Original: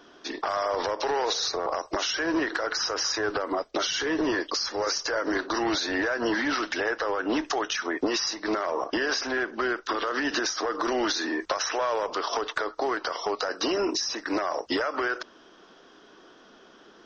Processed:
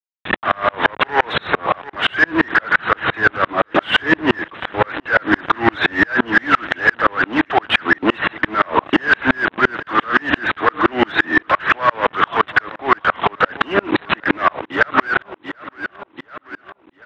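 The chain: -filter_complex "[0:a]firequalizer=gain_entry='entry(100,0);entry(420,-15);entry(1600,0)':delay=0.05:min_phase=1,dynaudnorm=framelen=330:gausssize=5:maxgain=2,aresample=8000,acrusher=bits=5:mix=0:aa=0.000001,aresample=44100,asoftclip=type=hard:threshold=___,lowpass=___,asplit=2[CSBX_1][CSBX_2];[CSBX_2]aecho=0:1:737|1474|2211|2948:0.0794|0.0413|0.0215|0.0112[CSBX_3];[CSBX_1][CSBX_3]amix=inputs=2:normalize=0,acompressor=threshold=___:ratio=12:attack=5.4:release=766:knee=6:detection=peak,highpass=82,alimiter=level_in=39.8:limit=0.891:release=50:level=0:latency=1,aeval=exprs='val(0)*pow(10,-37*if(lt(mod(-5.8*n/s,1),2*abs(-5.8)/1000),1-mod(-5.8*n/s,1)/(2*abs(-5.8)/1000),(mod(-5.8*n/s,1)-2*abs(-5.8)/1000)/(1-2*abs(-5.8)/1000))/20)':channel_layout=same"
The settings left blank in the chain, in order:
0.0473, 1900, 0.0178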